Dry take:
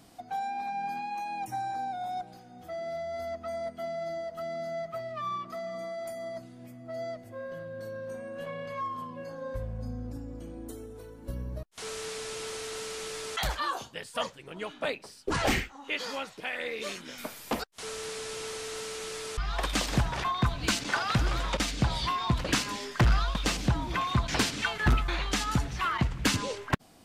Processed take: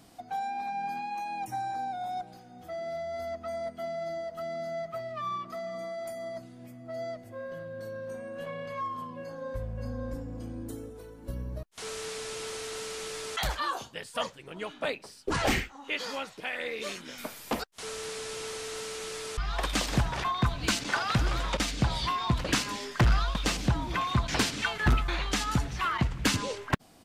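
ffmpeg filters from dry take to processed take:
-filter_complex "[0:a]asplit=2[s0][s1];[s1]afade=t=in:st=9.2:d=0.01,afade=t=out:st=10.32:d=0.01,aecho=0:1:570|1140:0.630957|0.0630957[s2];[s0][s2]amix=inputs=2:normalize=0"

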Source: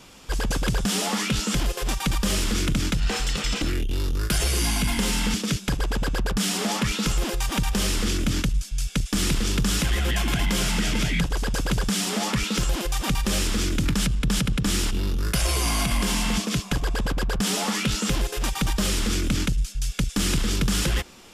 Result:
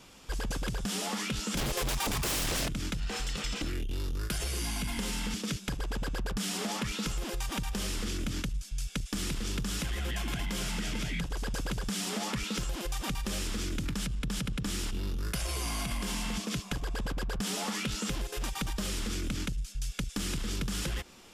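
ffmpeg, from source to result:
-filter_complex "[0:a]asettb=1/sr,asplit=3[s0][s1][s2];[s0]atrim=end=1.574[s3];[s1]atrim=start=1.57:end=2.68,asetpts=PTS-STARTPTS,afade=t=in:d=0.004:c=qsin,afade=t=out:st=1.106:d=0.004:c=qsin,aeval=exprs='0.211*sin(PI/2*3.98*val(0)/0.211)':c=same[s4];[s2]atrim=start=2.676[s5];[s3][s4]acrossfade=d=0.004:c1=hsin:c2=qsin[s6];[s6][s5]acrossfade=d=0.004:c1=qsin:c2=hsin,acompressor=threshold=0.0631:ratio=6,volume=0.501"

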